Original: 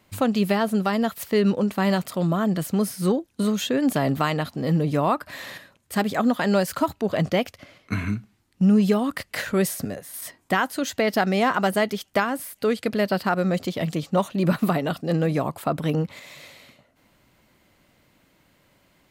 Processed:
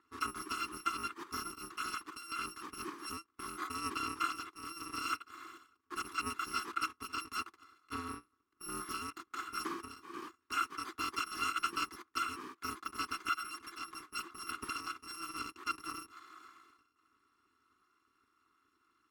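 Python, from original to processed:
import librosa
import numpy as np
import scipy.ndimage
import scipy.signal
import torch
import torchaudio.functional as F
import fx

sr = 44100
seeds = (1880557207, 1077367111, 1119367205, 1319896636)

y = fx.bit_reversed(x, sr, seeds[0], block=256)
y = fx.double_bandpass(y, sr, hz=630.0, octaves=1.8)
y = y * librosa.db_to_amplitude(8.5)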